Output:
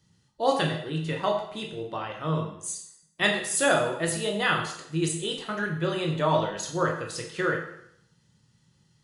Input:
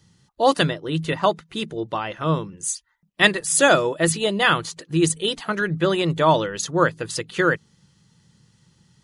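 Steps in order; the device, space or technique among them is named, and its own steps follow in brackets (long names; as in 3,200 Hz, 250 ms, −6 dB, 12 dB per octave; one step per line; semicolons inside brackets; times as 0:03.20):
bathroom (convolution reverb RT60 0.75 s, pre-delay 12 ms, DRR 0.5 dB)
level −9 dB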